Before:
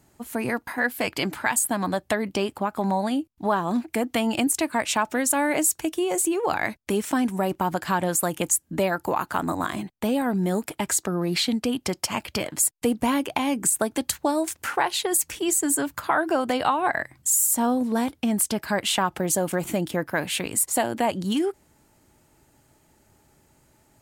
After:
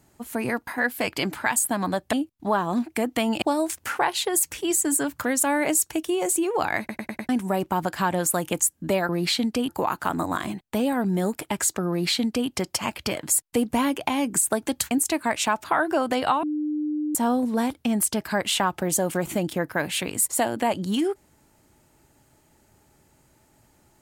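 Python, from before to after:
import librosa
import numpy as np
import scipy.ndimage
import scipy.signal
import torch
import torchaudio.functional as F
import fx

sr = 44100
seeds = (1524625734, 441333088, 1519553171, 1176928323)

y = fx.edit(x, sr, fx.cut(start_s=2.13, length_s=0.98),
    fx.swap(start_s=4.4, length_s=0.73, other_s=14.2, other_length_s=1.82),
    fx.stutter_over(start_s=6.68, slice_s=0.1, count=5),
    fx.duplicate(start_s=11.18, length_s=0.6, to_s=8.98),
    fx.bleep(start_s=16.81, length_s=0.72, hz=301.0, db=-23.5), tone=tone)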